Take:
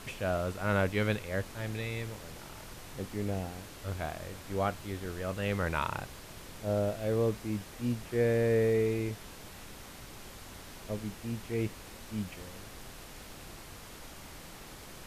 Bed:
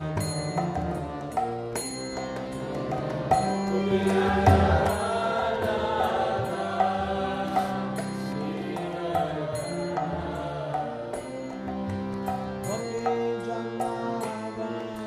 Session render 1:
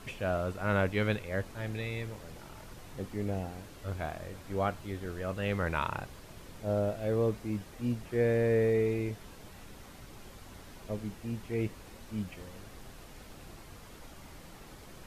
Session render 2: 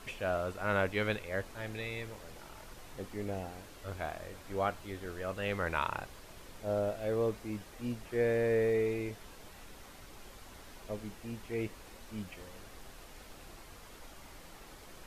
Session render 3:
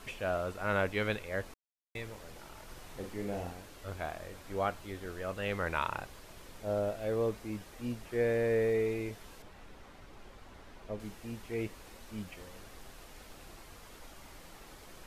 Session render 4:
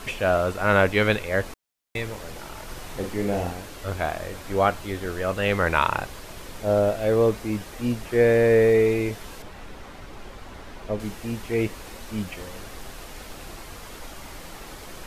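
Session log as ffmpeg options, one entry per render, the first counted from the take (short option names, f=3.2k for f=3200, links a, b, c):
-af "afftdn=nr=6:nf=-49"
-af "equalizer=f=130:w=0.56:g=-7.5"
-filter_complex "[0:a]asettb=1/sr,asplit=3[a][b][c];[a]atrim=end=2.644[d];[b]atrim=start=2.64:end=3.53,asetpts=PTS-STARTPTS,afade=t=in:d=0.004:c=qsin,afade=t=out:st=0.886:d=0.004:c=qsin,asplit=2[e][f];[f]adelay=45,volume=-5dB[g];[e][g]amix=inputs=2:normalize=0,atrim=end_sample=39249[h];[c]atrim=start=3.526[i];[d][h]acrossfade=d=0.004:c1=hsin:c2=qsin[j];[j][i]acrossfade=d=0.004:c1=qsin:c2=hsin,asettb=1/sr,asplit=3[k][l][m];[k]atrim=end=9.424[n];[l]atrim=start=9.42:end=11,asetpts=PTS-STARTPTS,afade=t=in:d=0.004:c=qsin,afade=t=out:st=1.576:d=0.004:c=qsin,lowpass=f=2.4k:p=1[o];[m]atrim=start=10.996[p];[n][o]acrossfade=d=0.004:c1=hsin:c2=qsin[q];[q][p]acrossfade=d=0.004:c1=qsin:c2=hsin,asplit=3[r][s][t];[r]atrim=end=1.54,asetpts=PTS-STARTPTS,afade=t=out:st=1.536:d=0.004:c=hsin[u];[s]atrim=start=1.54:end=1.95,asetpts=PTS-STARTPTS,volume=0[v];[t]atrim=start=1.95,asetpts=PTS-STARTPTS,afade=t=in:d=0.004:c=hsin[w];[u][v][w]concat=n=3:v=0:a=1"
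-af "volume=12dB"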